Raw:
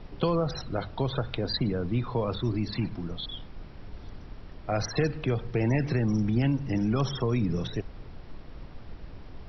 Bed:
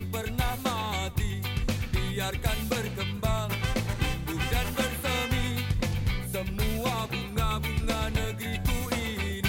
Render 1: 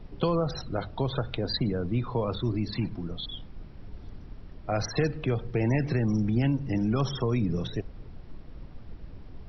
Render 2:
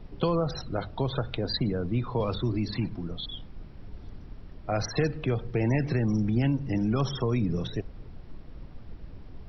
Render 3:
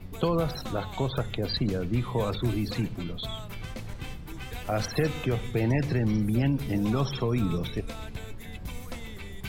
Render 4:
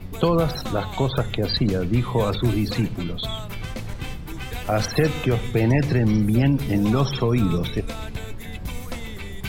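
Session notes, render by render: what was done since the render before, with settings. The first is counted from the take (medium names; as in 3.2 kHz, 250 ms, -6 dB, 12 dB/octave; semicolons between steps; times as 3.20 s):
noise reduction 6 dB, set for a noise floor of -45 dBFS
2.20–2.77 s: three bands compressed up and down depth 70%
add bed -11 dB
trim +6.5 dB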